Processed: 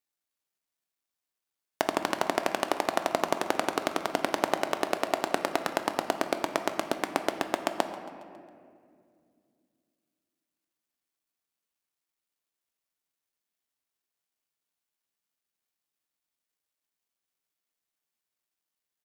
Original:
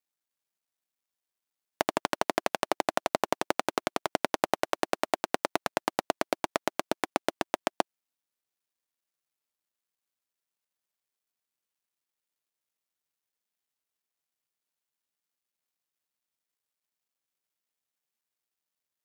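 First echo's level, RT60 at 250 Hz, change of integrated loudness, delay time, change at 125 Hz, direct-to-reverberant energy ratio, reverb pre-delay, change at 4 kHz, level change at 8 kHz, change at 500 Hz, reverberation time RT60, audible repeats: -18.0 dB, 3.4 s, +1.0 dB, 0.137 s, +0.5 dB, 6.5 dB, 3 ms, +0.5 dB, +0.5 dB, +1.0 dB, 2.2 s, 3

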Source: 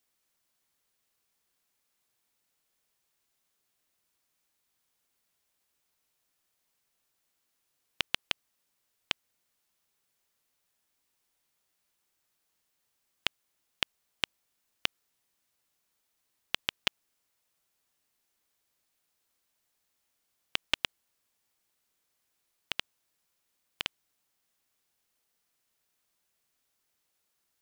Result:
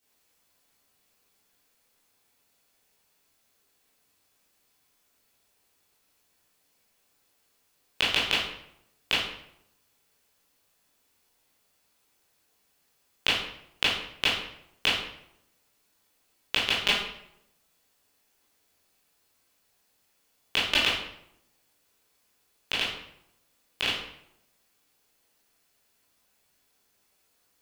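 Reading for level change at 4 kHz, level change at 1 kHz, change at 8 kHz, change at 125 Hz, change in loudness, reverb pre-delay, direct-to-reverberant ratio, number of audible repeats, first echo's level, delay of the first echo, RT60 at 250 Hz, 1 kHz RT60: +8.5 dB, +9.5 dB, +7.5 dB, +10.0 dB, +8.0 dB, 15 ms, -9.0 dB, none, none, none, 0.85 s, 0.75 s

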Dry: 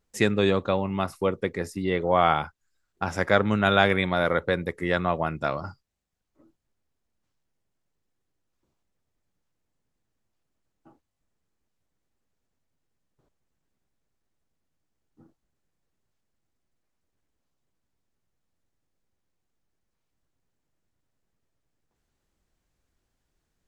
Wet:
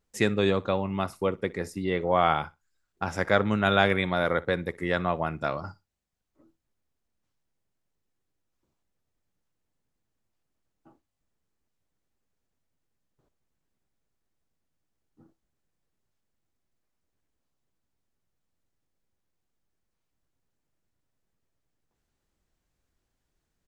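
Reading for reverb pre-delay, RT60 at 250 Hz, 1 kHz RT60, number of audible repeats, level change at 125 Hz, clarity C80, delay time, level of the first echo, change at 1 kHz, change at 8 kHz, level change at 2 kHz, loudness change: none, none, none, 1, -2.0 dB, none, 61 ms, -22.0 dB, -2.0 dB, n/a, -2.0 dB, -2.0 dB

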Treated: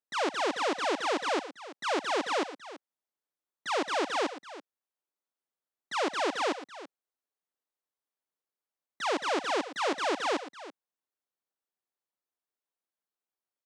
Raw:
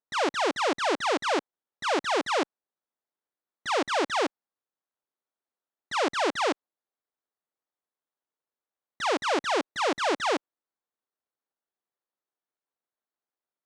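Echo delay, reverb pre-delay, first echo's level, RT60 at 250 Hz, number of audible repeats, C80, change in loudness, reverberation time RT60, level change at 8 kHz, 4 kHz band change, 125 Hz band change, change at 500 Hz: 0.117 s, none, -17.0 dB, none, 2, none, -3.5 dB, none, -3.5 dB, -3.5 dB, n/a, -3.5 dB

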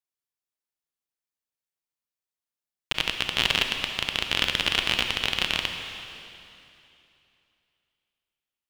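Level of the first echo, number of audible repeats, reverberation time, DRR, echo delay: none, none, 2.8 s, 4.5 dB, none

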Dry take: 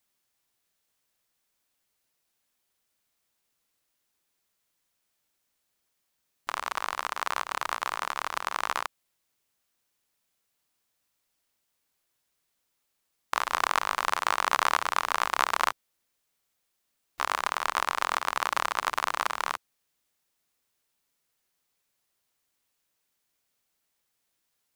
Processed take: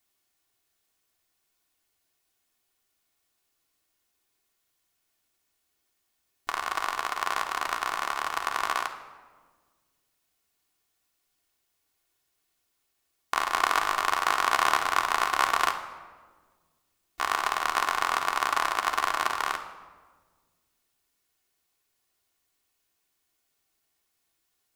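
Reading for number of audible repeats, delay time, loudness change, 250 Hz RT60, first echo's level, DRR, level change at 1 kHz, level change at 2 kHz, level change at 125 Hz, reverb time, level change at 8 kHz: none, none, +2.0 dB, 2.1 s, none, 3.0 dB, +2.0 dB, +2.0 dB, n/a, 1.5 s, +1.5 dB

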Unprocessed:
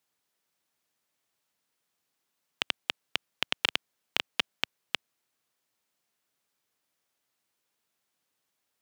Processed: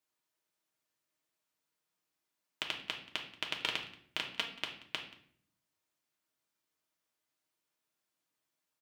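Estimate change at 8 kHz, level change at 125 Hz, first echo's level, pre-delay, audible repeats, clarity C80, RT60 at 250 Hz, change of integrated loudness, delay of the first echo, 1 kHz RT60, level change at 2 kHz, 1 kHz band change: -6.0 dB, -5.0 dB, -20.5 dB, 3 ms, 1, 12.0 dB, 0.95 s, -6.0 dB, 0.181 s, 0.60 s, -6.0 dB, -5.0 dB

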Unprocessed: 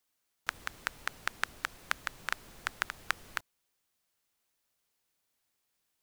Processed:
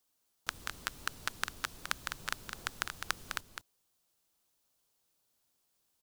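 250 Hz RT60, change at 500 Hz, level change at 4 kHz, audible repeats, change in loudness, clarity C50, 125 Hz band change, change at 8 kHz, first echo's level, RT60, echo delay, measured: none, -1.5 dB, +1.5 dB, 1, -1.5 dB, none, +3.5 dB, +3.0 dB, -7.0 dB, none, 0.206 s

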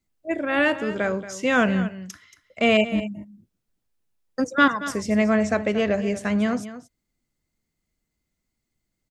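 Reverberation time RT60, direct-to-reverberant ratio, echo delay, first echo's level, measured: none, none, 0.229 s, -14.0 dB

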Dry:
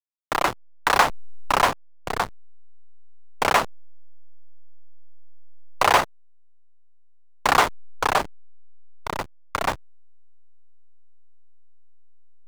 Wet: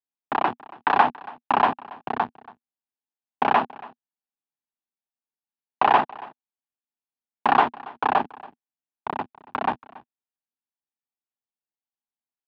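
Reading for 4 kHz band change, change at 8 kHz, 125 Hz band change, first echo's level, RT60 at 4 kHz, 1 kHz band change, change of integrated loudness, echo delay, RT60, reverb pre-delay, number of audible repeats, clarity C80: -9.0 dB, under -30 dB, -5.5 dB, -21.0 dB, none, +1.5 dB, -1.0 dB, 0.28 s, none, none, 1, none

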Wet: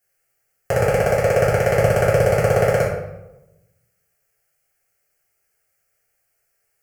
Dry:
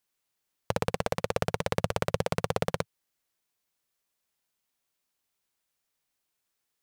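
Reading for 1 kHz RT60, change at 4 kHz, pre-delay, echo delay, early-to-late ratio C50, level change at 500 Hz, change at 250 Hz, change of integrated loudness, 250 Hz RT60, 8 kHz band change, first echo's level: 0.90 s, +2.5 dB, 3 ms, none, 2.5 dB, +15.0 dB, +8.0 dB, +13.0 dB, 1.1 s, +9.5 dB, none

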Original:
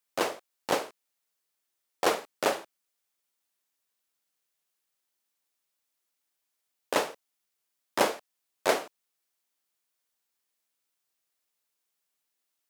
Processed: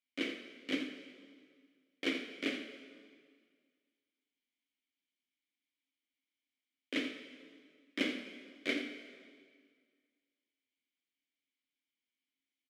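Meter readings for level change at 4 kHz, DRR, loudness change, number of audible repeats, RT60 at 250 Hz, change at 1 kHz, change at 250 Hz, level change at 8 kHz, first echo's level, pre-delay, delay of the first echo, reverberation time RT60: -4.5 dB, 6.0 dB, -9.0 dB, 1, 1.9 s, -24.0 dB, +1.0 dB, -18.5 dB, -10.5 dB, 31 ms, 82 ms, 1.9 s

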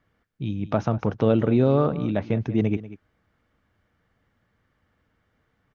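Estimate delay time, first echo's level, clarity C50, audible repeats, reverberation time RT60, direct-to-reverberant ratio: 0.19 s, -16.0 dB, none, 1, none, none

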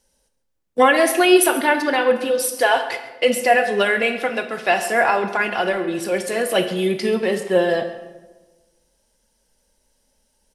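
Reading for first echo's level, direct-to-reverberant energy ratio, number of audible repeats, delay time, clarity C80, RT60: -17.0 dB, 8.0 dB, 1, 0.135 s, 10.5 dB, 1.3 s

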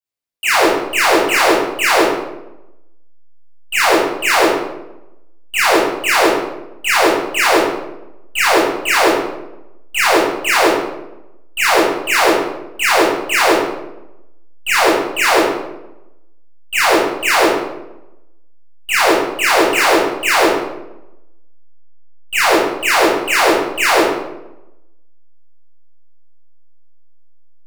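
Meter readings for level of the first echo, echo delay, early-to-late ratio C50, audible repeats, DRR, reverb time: none, none, -0.5 dB, none, -9.5 dB, 0.95 s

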